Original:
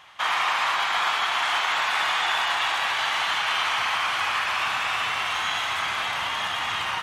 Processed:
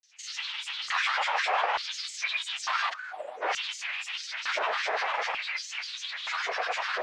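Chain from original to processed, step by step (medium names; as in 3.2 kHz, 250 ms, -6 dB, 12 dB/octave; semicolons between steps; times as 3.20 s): time-frequency box 2.91–3.42 s, 780–7900 Hz -26 dB; formant shift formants +3 st; LFO high-pass square 0.56 Hz 810–4300 Hz; granulator 100 ms, grains 20 per s, spray 24 ms, pitch spread up and down by 12 st; distance through air 140 m; trim -3.5 dB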